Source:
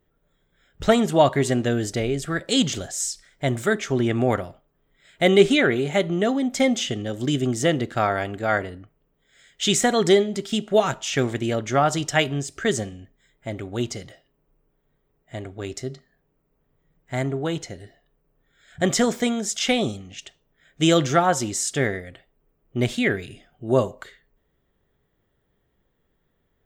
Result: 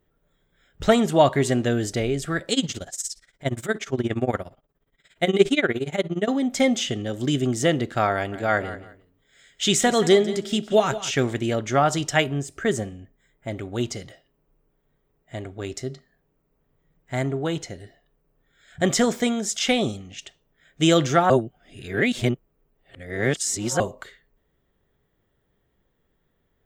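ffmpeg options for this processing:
-filter_complex "[0:a]asettb=1/sr,asplit=3[a][b][c];[a]atrim=end=2.534[d];[b]atrim=start=2.53:end=6.28,asetpts=PTS-STARTPTS,afade=t=in:d=0.004:c=qsin,afade=t=out:st=3.746:d=0.004:c=qsin,tremolo=f=17:d=0.9[e];[c]atrim=start=6.276[f];[d][e]acrossfade=d=0.004:c1=hsin:c2=qsin[g];[g][f]acrossfade=d=0.004:c1=qsin:c2=hsin,asettb=1/sr,asplit=3[h][i][j];[h]atrim=end=8.144[k];[i]atrim=start=8.14:end=11.11,asetpts=PTS-STARTPTS,afade=t=in:d=0.004:c=qsin,afade=t=out:st=2.966:d=0.004:c=qsin,aecho=1:1:176|352:0.2|0.0439,atrim=end_sample=130977[l];[j]atrim=start=11.106[m];[k][l]acrossfade=d=0.004:c1=hsin:c2=qsin[n];[n][m]acrossfade=d=0.004:c1=qsin:c2=hsin,asettb=1/sr,asplit=3[o][p][q];[o]atrim=end=12.214[r];[p]atrim=start=12.21:end=13.48,asetpts=PTS-STARTPTS,afade=t=in:d=0.004:c=qsin,afade=t=out:st=1.266:d=0.004:c=qsin,equalizer=f=4.5k:t=o:w=1.5:g=-7.5[s];[q]atrim=start=13.476[t];[r][s]acrossfade=d=0.004:c1=hsin:c2=qsin[u];[u][t]acrossfade=d=0.004:c1=qsin:c2=hsin,asplit=3[v][w][x];[v]atrim=end=21.302[y];[w]atrim=start=21.298:end=23.802,asetpts=PTS-STARTPTS,areverse[z];[x]atrim=start=23.798[aa];[y][z]acrossfade=d=0.004:c1=hsin:c2=hsin[ab];[ab][aa]acrossfade=d=0.004:c1=hsin:c2=hsin"

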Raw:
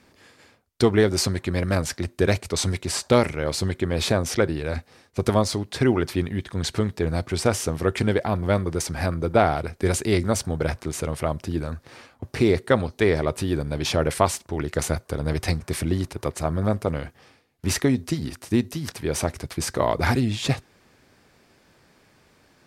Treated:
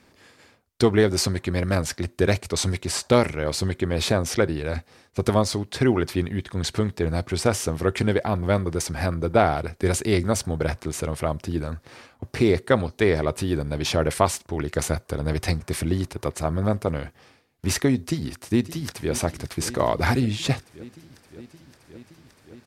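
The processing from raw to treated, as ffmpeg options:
-filter_complex "[0:a]asplit=2[a][b];[b]afade=t=in:st=18.05:d=0.01,afade=t=out:st=19.13:d=0.01,aecho=0:1:570|1140|1710|2280|2850|3420|3990|4560|5130|5700|6270|6840:0.177828|0.142262|0.11381|0.0910479|0.0728383|0.0582707|0.0466165|0.0372932|0.0298346|0.0238677|0.0190941|0.0152753[c];[a][c]amix=inputs=2:normalize=0"

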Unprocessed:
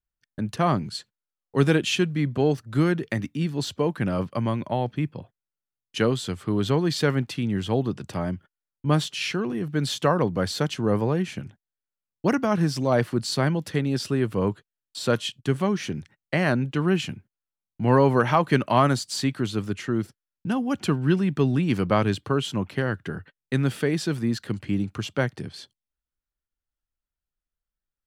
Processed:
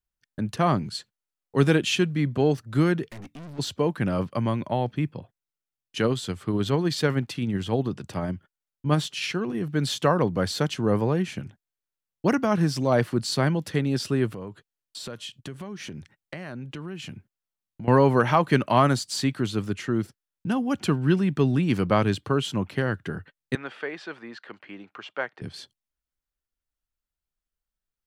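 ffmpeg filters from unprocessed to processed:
-filter_complex "[0:a]asplit=3[a][b][c];[a]afade=t=out:st=3.07:d=0.02[d];[b]aeval=exprs='(tanh(89.1*val(0)+0.45)-tanh(0.45))/89.1':c=same,afade=t=in:st=3.07:d=0.02,afade=t=out:st=3.58:d=0.02[e];[c]afade=t=in:st=3.58:d=0.02[f];[d][e][f]amix=inputs=3:normalize=0,asettb=1/sr,asplit=3[g][h][i];[g]atrim=end=5.184[j];[h]atrim=start=5.18:end=9.55,asetpts=PTS-STARTPTS,afade=t=in:d=0.004:c=qsin,afade=t=out:st=4.366:d=0.004:c=qsin,tremolo=f=16:d=0.29[k];[i]atrim=start=9.546[l];[j][k]acrossfade=d=0.004:c1=hsin:c2=qsin[m];[m][l]acrossfade=d=0.004:c1=qsin:c2=hsin,asettb=1/sr,asplit=3[n][o][p];[n]atrim=end=14.344[q];[o]atrim=start=14.34:end=17.88,asetpts=PTS-STARTPTS,afade=t=in:d=0.004:c=qsin,afade=t=out:st=3.536:d=0.004:c=qsin,acompressor=threshold=-34dB:ratio=5:attack=3.2:release=140:knee=1:detection=peak[r];[p]atrim=start=17.876[s];[q][r]acrossfade=d=0.004:c1=hsin:c2=qsin[t];[t][s]acrossfade=d=0.004:c1=qsin:c2=hsin,asettb=1/sr,asplit=3[u][v][w];[u]atrim=end=23.554[x];[v]atrim=start=23.55:end=25.42,asetpts=PTS-STARTPTS,afade=t=in:d=0.004:c=qsin,afade=t=out:st=1.866:d=0.004:c=qsin,highpass=670,lowpass=2.3k[y];[w]atrim=start=25.416[z];[x][y]acrossfade=d=0.004:c1=hsin:c2=qsin[aa];[aa][z]acrossfade=d=0.004:c1=qsin:c2=hsin"

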